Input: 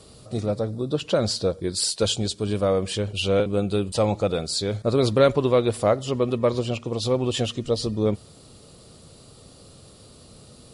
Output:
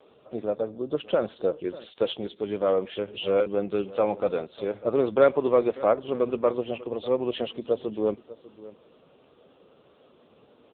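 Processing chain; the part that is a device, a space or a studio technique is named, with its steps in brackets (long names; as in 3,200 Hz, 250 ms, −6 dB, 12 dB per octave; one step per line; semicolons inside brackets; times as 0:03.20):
satellite phone (band-pass filter 310–3,200 Hz; single-tap delay 596 ms −18 dB; AMR narrowband 5.9 kbit/s 8,000 Hz)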